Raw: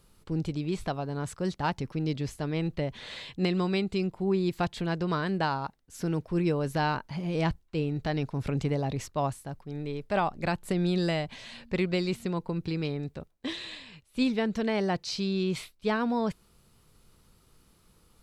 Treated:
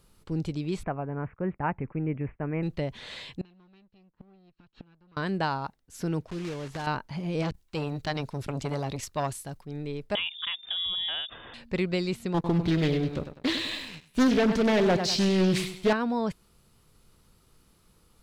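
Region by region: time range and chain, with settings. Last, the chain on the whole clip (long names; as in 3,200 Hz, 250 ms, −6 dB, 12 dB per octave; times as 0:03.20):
0:00.83–0:02.63: Butterworth low-pass 2,500 Hz 72 dB per octave + downward expander −45 dBFS
0:03.41–0:05.17: lower of the sound and its delayed copy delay 0.72 ms + low-pass filter 4,500 Hz 24 dB per octave + gate with flip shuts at −27 dBFS, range −31 dB
0:06.26–0:06.87: one scale factor per block 3 bits + low-pass filter 6,400 Hz + downward compressor 2 to 1, threshold −37 dBFS
0:07.42–0:09.65: high-shelf EQ 2,200 Hz +9 dB + saturating transformer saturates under 940 Hz
0:10.15–0:11.54: downward compressor 2 to 1, threshold −30 dBFS + voice inversion scrambler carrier 3,600 Hz
0:12.34–0:15.93: repeating echo 100 ms, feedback 43%, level −10 dB + leveller curve on the samples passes 2 + highs frequency-modulated by the lows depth 0.41 ms
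whole clip: no processing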